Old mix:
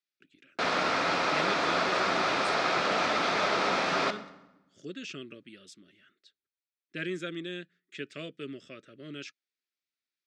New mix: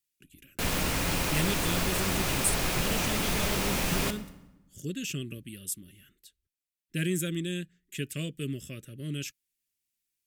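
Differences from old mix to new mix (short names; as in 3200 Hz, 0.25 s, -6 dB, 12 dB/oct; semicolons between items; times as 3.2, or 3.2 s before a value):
background -3.5 dB; master: remove speaker cabinet 340–4700 Hz, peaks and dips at 680 Hz +5 dB, 1300 Hz +8 dB, 2900 Hz -6 dB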